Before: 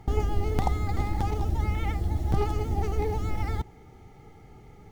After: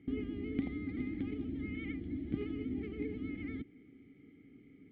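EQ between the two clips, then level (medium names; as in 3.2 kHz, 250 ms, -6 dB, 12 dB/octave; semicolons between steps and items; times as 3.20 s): vowel filter i; distance through air 430 m; +7.5 dB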